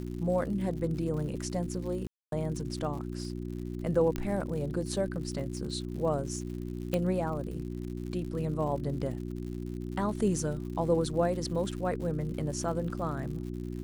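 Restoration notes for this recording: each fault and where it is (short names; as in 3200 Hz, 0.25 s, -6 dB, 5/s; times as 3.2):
crackle 120/s -40 dBFS
hum 60 Hz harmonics 6 -37 dBFS
2.07–2.32 gap 0.252 s
4.16 pop -19 dBFS
6.94 pop -16 dBFS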